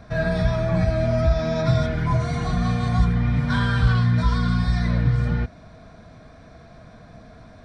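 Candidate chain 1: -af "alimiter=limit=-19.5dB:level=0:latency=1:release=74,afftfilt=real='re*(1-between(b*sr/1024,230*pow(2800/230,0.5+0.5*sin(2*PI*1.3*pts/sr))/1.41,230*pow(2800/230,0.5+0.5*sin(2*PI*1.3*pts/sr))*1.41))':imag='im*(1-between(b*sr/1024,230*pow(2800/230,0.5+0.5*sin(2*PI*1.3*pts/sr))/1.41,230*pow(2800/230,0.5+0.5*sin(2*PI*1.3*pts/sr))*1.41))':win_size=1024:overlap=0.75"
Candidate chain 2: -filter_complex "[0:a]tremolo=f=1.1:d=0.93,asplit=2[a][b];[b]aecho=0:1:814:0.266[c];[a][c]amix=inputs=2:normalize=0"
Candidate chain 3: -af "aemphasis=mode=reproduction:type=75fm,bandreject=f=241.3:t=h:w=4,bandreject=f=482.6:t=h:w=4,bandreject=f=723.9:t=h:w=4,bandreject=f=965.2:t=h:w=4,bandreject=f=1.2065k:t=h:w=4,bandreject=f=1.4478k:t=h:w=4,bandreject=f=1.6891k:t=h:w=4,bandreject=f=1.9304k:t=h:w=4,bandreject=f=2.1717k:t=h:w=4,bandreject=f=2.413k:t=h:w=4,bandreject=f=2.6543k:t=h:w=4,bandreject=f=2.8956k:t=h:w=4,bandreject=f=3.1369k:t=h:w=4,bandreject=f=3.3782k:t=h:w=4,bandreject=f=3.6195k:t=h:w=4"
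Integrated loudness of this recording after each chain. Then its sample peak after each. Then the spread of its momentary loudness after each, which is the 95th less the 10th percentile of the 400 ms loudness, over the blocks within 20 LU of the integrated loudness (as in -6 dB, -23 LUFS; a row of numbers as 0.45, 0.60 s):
-28.5, -26.0, -21.0 LUFS; -18.5, -9.5, -7.0 dBFS; 20, 16, 4 LU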